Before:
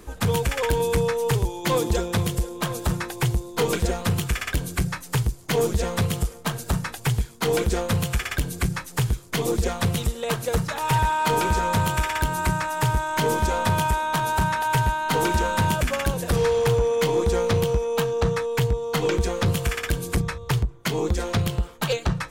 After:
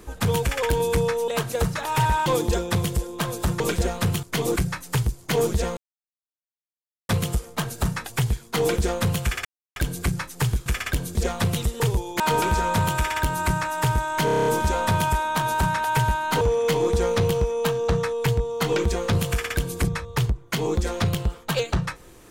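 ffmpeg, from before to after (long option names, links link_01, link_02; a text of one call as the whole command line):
ffmpeg -i in.wav -filter_complex "[0:a]asplit=20[link_01][link_02][link_03][link_04][link_05][link_06][link_07][link_08][link_09][link_10][link_11][link_12][link_13][link_14][link_15][link_16][link_17][link_18][link_19][link_20];[link_01]atrim=end=1.282[link_21];[link_02]atrim=start=10.208:end=11.192[link_22];[link_03]atrim=start=1.678:end=3.022[link_23];[link_04]atrim=start=3.638:end=4.272[link_24];[link_05]atrim=start=9.228:end=9.562[link_25];[link_06]atrim=start=4.758:end=5.97,asetpts=PTS-STARTPTS,afade=type=out:start_time=1.208:duration=0.004:curve=hsin,apad=pad_dur=1.32[link_26];[link_07]atrim=start=5.97:end=8.33,asetpts=PTS-STARTPTS,afade=type=in:duration=0.004:curve=hsin,afade=type=out:start_time=2.356:duration=0.004:curve=hsin,apad=pad_dur=0.31[link_27];[link_08]atrim=start=8.33:end=9.232,asetpts=PTS-STARTPTS,afade=type=in:duration=0.004:curve=hsin[link_28];[link_09]atrim=start=4.268:end=4.762[link_29];[link_10]atrim=start=9.558:end=10.212[link_30];[link_11]atrim=start=1.278:end=1.682[link_31];[link_12]atrim=start=11.188:end=13.272[link_32];[link_13]atrim=start=13.238:end=13.272[link_33];[link_14]atrim=start=13.238:end=13.272[link_34];[link_15]atrim=start=13.238:end=13.272[link_35];[link_16]atrim=start=13.238:end=13.272[link_36];[link_17]atrim=start=13.238:end=13.272[link_37];[link_18]atrim=start=13.238:end=13.272[link_38];[link_19]atrim=start=13.238:end=15.192[link_39];[link_20]atrim=start=16.738[link_40];[link_21][link_22]acrossfade=duration=0.004:curve1=hsin:curve2=hsin[link_41];[link_41][link_23]acrossfade=duration=0.004:curve1=hsin:curve2=hsin[link_42];[link_42][link_24]acrossfade=duration=0.004:curve1=hsin:curve2=hsin[link_43];[link_43][link_25]acrossfade=duration=0.004:curve1=hsin:curve2=hsin[link_44];[link_26][link_27][link_28]concat=n=3:v=0:a=1[link_45];[link_44][link_45]acrossfade=duration=0.004:curve1=hsin:curve2=hsin[link_46];[link_46][link_29]acrossfade=duration=0.004:curve1=hsin:curve2=hsin[link_47];[link_47][link_30]acrossfade=duration=0.004:curve1=hsin:curve2=hsin[link_48];[link_48][link_31]acrossfade=duration=0.004:curve1=hsin:curve2=hsin[link_49];[link_49][link_32]acrossfade=duration=0.004:curve1=hsin:curve2=hsin[link_50];[link_50][link_33]acrossfade=duration=0.004:curve1=hsin:curve2=hsin[link_51];[link_51][link_34]acrossfade=duration=0.004:curve1=hsin:curve2=hsin[link_52];[link_52][link_35]acrossfade=duration=0.004:curve1=hsin:curve2=hsin[link_53];[link_53][link_36]acrossfade=duration=0.004:curve1=hsin:curve2=hsin[link_54];[link_54][link_37]acrossfade=duration=0.004:curve1=hsin:curve2=hsin[link_55];[link_55][link_38]acrossfade=duration=0.004:curve1=hsin:curve2=hsin[link_56];[link_56][link_39]acrossfade=duration=0.004:curve1=hsin:curve2=hsin[link_57];[link_57][link_40]acrossfade=duration=0.004:curve1=hsin:curve2=hsin" out.wav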